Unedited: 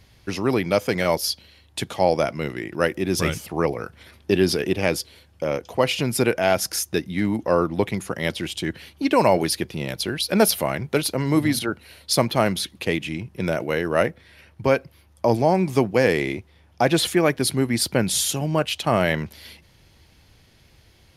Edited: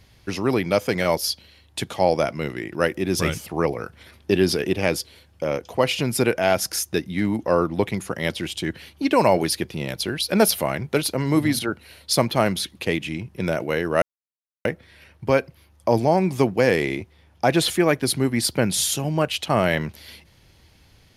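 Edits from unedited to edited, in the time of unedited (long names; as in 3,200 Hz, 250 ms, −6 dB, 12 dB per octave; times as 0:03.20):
0:14.02: splice in silence 0.63 s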